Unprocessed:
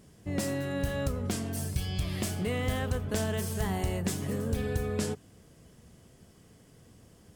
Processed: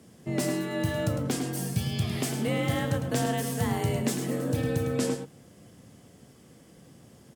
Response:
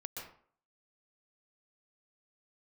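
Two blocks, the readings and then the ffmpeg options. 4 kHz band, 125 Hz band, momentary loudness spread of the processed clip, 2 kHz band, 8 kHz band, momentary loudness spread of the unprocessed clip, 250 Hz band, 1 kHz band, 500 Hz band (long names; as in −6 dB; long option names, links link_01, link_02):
+3.5 dB, +3.0 dB, 3 LU, +3.0 dB, +3.0 dB, 3 LU, +4.5 dB, +4.5 dB, +3.5 dB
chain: -filter_complex "[0:a]asplit=2[link_01][link_02];[link_02]adelay=105,volume=-7dB,highshelf=frequency=4000:gain=-2.36[link_03];[link_01][link_03]amix=inputs=2:normalize=0,afreqshift=43,volume=2.5dB"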